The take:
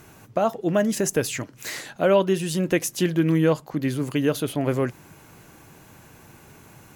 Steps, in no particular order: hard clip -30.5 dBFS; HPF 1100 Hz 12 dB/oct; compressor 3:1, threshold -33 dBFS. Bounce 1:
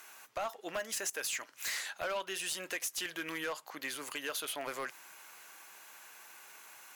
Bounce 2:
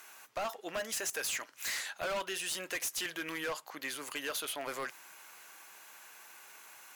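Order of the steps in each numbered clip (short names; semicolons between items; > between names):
HPF > compressor > hard clip; HPF > hard clip > compressor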